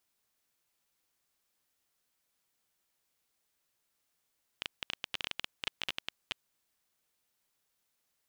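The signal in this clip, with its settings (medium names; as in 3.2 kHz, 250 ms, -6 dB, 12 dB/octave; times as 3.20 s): random clicks 13 per s -16.5 dBFS 2.06 s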